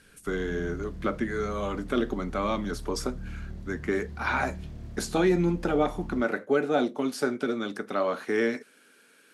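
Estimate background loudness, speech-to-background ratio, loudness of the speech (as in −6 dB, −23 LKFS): −42.0 LKFS, 13.0 dB, −29.0 LKFS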